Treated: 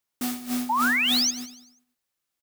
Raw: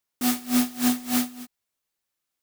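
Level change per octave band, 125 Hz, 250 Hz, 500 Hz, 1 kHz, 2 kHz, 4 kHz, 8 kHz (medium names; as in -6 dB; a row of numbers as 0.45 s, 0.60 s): no reading, -5.0 dB, -5.0 dB, +7.5 dB, +11.5 dB, +9.5 dB, +1.5 dB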